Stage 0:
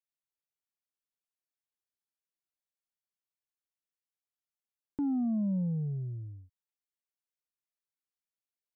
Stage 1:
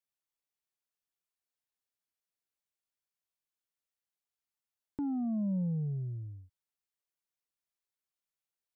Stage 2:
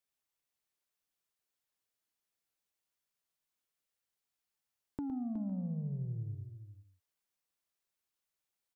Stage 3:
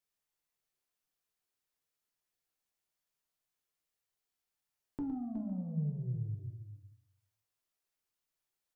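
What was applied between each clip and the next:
peaking EQ 260 Hz -3.5 dB
compression, threshold -40 dBFS, peak gain reduction 9.5 dB; multi-tap echo 111/367/508 ms -9/-10/-19.5 dB; trim +2.5 dB
simulated room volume 47 m³, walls mixed, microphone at 0.42 m; trim -2 dB

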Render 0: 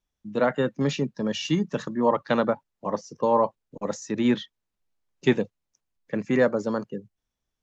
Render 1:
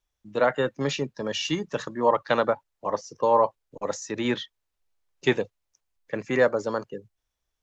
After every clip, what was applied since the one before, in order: peaking EQ 200 Hz -11.5 dB 1.2 oct; trim +2.5 dB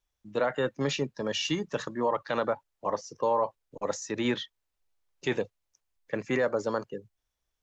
peak limiter -16 dBFS, peak gain reduction 8 dB; trim -1.5 dB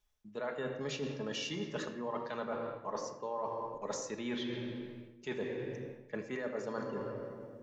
simulated room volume 3500 m³, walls mixed, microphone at 1.4 m; reverse; compression 6:1, threshold -37 dBFS, peak gain reduction 16 dB; reverse; trim +1 dB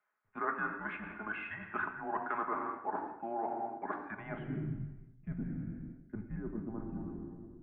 band-pass sweep 1.6 kHz -> 220 Hz, 4.07–4.96 s; mistuned SSB -220 Hz 360–2500 Hz; trim +12.5 dB

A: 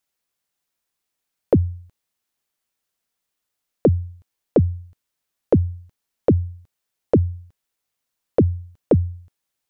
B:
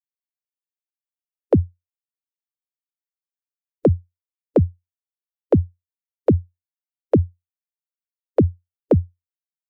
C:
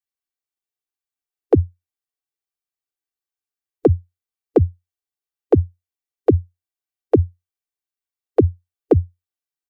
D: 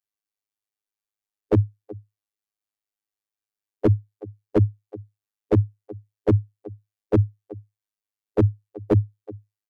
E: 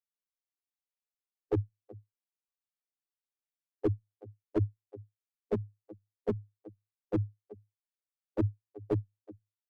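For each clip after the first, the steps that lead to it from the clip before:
expander on every frequency bin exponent 3; high-pass 56 Hz 24 dB/octave; trim +3 dB
comb 2.6 ms, depth 72%
robot voice 104 Hz; delay 375 ms -21.5 dB; slew-rate limiter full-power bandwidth 97 Hz
flange 1.3 Hz, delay 2.3 ms, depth 6 ms, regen +1%; trim -8 dB

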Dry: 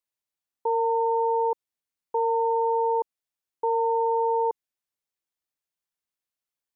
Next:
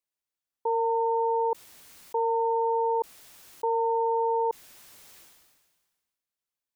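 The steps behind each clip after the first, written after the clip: decay stretcher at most 38 dB/s; trim -2 dB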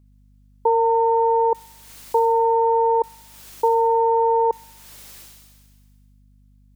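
transient shaper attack +3 dB, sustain -6 dB; hum 50 Hz, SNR 32 dB; feedback echo behind a high-pass 64 ms, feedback 64%, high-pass 2.9 kHz, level -4 dB; trim +7.5 dB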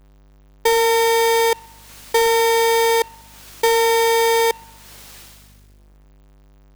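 square wave that keeps the level; trim -1.5 dB

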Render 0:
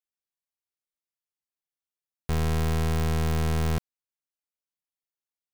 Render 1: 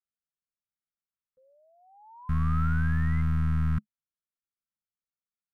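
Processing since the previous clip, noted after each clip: painted sound rise, 1.37–3.22 s, 510–2100 Hz -36 dBFS; FFT filter 150 Hz 0 dB, 210 Hz +3 dB, 390 Hz -26 dB, 690 Hz -26 dB, 1.3 kHz 0 dB, 2.5 kHz -14 dB, 4.4 kHz -22 dB, 7.2 kHz -24 dB, 10 kHz -22 dB, 15 kHz -25 dB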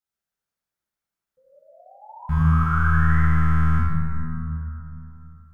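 plate-style reverb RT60 3.2 s, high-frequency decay 0.3×, DRR -9.5 dB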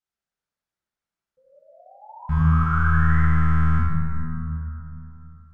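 distance through air 52 m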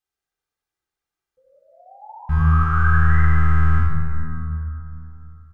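comb 2.5 ms, depth 54%; trim +1.5 dB

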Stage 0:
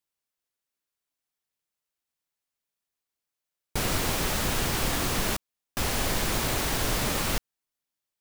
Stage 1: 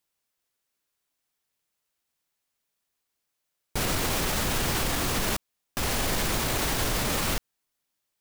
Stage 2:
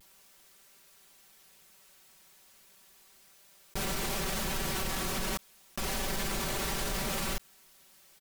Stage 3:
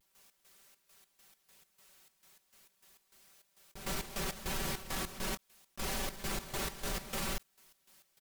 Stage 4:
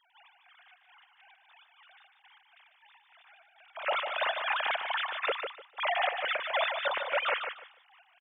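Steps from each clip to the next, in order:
peak limiter -24 dBFS, peak gain reduction 9 dB; trim +6.5 dB
comb 5.2 ms, depth 69%; vibrato 0.34 Hz 19 cents; level flattener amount 50%; trim -9 dB
trance gate ".x.xx.x.x" 101 bpm -12 dB; trim -3 dB
formants replaced by sine waves; on a send: feedback delay 149 ms, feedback 21%, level -6.5 dB; on the sum: trim +5.5 dB

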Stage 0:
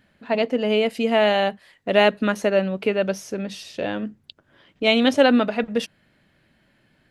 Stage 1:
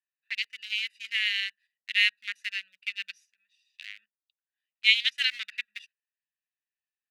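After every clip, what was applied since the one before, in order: local Wiener filter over 41 samples; elliptic high-pass 2 kHz, stop band 60 dB; gate -58 dBFS, range -13 dB; trim +3.5 dB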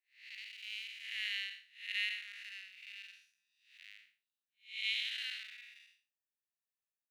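spectral blur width 227 ms; treble shelf 11 kHz +8.5 dB; trim -7 dB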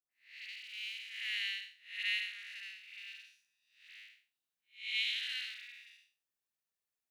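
phase dispersion highs, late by 114 ms, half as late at 990 Hz; trim +1.5 dB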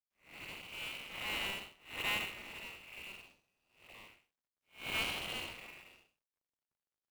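median filter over 25 samples; trim +9.5 dB

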